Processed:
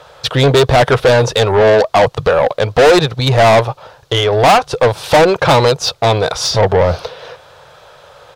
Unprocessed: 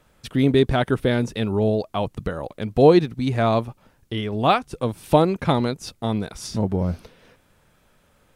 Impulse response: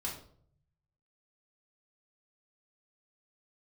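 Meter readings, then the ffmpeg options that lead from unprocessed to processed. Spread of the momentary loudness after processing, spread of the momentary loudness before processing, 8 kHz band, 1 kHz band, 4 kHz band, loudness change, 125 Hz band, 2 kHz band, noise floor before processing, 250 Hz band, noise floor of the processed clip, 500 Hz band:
6 LU, 12 LU, +17.0 dB, +12.0 dB, +15.5 dB, +10.0 dB, +8.0 dB, +15.0 dB, -61 dBFS, +1.5 dB, -44 dBFS, +11.0 dB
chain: -filter_complex "[0:a]firequalizer=gain_entry='entry(140,0);entry(210,-23);entry(480,0);entry(1500,-7);entry(2100,-13);entry(3800,-4);entry(8800,-17)':delay=0.05:min_phase=1,asplit=2[a][b];[b]highpass=f=720:p=1,volume=35dB,asoftclip=type=tanh:threshold=-0.5dB[c];[a][c]amix=inputs=2:normalize=0,lowpass=f=7.6k:p=1,volume=-6dB"

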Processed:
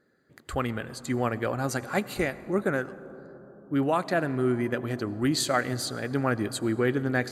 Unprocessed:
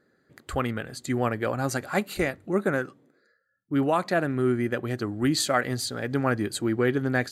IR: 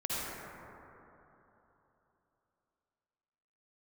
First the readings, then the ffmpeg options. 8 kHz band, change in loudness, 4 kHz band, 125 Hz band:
-1.5 dB, -1.5 dB, -1.5 dB, -1.5 dB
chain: -filter_complex "[0:a]asplit=2[a][b];[1:a]atrim=start_sample=2205,asetrate=29988,aresample=44100[c];[b][c]afir=irnorm=-1:irlink=0,volume=-24dB[d];[a][d]amix=inputs=2:normalize=0,volume=-2dB"

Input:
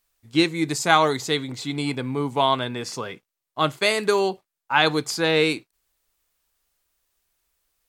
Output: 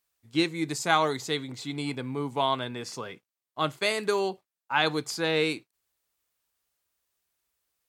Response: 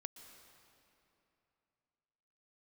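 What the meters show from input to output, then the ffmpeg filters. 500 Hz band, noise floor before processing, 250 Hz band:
-6.0 dB, -85 dBFS, -6.0 dB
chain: -af "highpass=67,volume=-6dB"

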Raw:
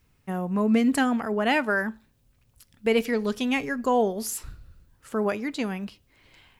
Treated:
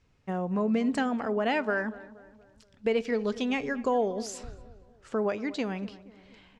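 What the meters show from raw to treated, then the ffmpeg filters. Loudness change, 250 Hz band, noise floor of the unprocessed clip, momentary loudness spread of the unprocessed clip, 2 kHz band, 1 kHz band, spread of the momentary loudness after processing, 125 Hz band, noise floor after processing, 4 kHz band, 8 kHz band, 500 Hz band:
-4.0 dB, -4.5 dB, -66 dBFS, 11 LU, -5.5 dB, -4.0 dB, 11 LU, -3.5 dB, -63 dBFS, -5.5 dB, -8.5 dB, -2.5 dB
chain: -filter_complex "[0:a]lowpass=f=7k:w=0.5412,lowpass=f=7k:w=1.3066,equalizer=f=540:w=1.2:g=4.5,acompressor=threshold=-24dB:ratio=2,asplit=2[a][b];[b]adelay=237,lowpass=f=1.6k:p=1,volume=-17dB,asplit=2[c][d];[d]adelay=237,lowpass=f=1.6k:p=1,volume=0.5,asplit=2[e][f];[f]adelay=237,lowpass=f=1.6k:p=1,volume=0.5,asplit=2[g][h];[h]adelay=237,lowpass=f=1.6k:p=1,volume=0.5[i];[c][e][g][i]amix=inputs=4:normalize=0[j];[a][j]amix=inputs=2:normalize=0,volume=-2.5dB"

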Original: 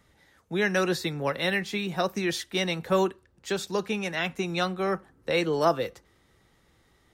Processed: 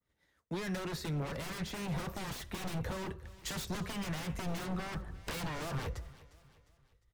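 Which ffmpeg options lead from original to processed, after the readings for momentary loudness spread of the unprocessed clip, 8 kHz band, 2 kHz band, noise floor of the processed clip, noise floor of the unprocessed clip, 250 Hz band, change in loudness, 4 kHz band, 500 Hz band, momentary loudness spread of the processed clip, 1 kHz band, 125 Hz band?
7 LU, -5.5 dB, -13.5 dB, -76 dBFS, -65 dBFS, -9.0 dB, -11.5 dB, -11.0 dB, -16.5 dB, 6 LU, -12.0 dB, -3.0 dB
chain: -filter_complex "[0:a]bandreject=f=810:w=12,agate=range=-33dB:threshold=-50dB:ratio=3:detection=peak,asubboost=boost=10:cutoff=80,asoftclip=type=tanh:threshold=-26dB,dynaudnorm=f=370:g=7:m=6.5dB,aeval=exprs='0.0355*(abs(mod(val(0)/0.0355+3,4)-2)-1)':c=same,acrossover=split=220[a][b];[b]acompressor=threshold=-41dB:ratio=3[c];[a][c]amix=inputs=2:normalize=0,aecho=1:1:354|708|1062:0.0944|0.0415|0.0183,adynamicequalizer=threshold=0.00158:dfrequency=2000:dqfactor=0.7:tfrequency=2000:tqfactor=0.7:attack=5:release=100:ratio=0.375:range=3:mode=cutabove:tftype=highshelf,volume=1dB"

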